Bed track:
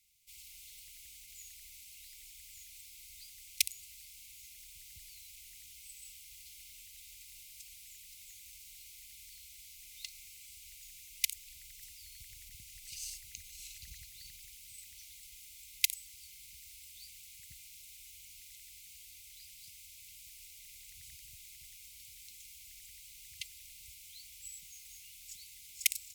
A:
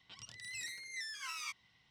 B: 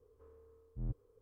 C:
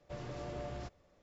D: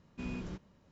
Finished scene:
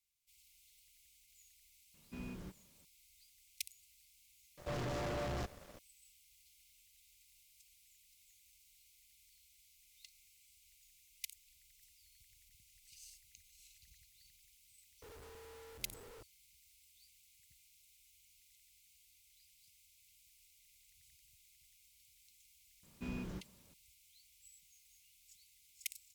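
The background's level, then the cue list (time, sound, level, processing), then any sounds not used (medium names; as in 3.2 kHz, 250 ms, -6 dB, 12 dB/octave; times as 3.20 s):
bed track -14 dB
1.94 s: add D -7 dB
4.57 s: add C -5 dB + waveshaping leveller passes 5
15.02 s: add B -9.5 dB + one-bit comparator
22.83 s: add D -3 dB
not used: A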